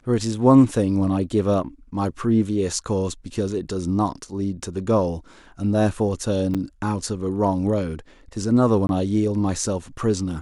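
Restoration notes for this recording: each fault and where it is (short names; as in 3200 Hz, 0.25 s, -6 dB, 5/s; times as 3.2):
6.54–6.55 gap 6.7 ms
8.87–8.89 gap 21 ms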